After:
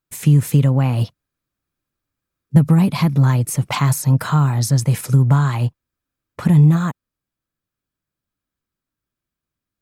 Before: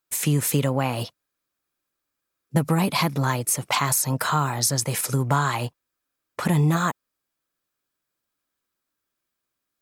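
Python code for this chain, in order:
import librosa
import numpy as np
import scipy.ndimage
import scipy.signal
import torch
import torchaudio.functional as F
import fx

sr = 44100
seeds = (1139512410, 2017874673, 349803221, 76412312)

p1 = fx.bass_treble(x, sr, bass_db=15, treble_db=-3)
p2 = fx.rider(p1, sr, range_db=10, speed_s=0.5)
p3 = p1 + (p2 * 10.0 ** (-1.0 / 20.0))
y = p3 * 10.0 ** (-7.5 / 20.0)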